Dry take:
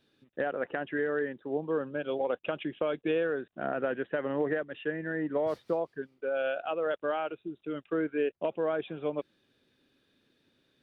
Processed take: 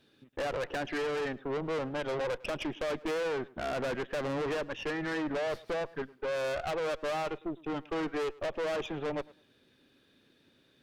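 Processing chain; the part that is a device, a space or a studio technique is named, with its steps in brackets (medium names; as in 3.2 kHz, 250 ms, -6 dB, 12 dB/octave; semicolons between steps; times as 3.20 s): rockabilly slapback (valve stage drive 39 dB, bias 0.7; tape echo 106 ms, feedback 22%, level -20 dB, low-pass 3.2 kHz); trim +8.5 dB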